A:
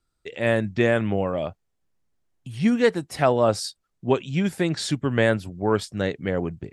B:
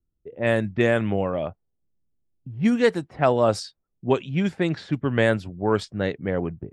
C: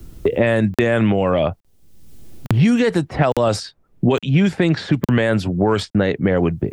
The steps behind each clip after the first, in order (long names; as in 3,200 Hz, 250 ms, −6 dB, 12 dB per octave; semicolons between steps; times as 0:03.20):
low-pass that shuts in the quiet parts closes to 340 Hz, open at −16.5 dBFS
regular buffer underruns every 0.86 s, samples 2,048, zero, from 0:00.74; boost into a limiter +17 dB; multiband upward and downward compressor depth 100%; level −6 dB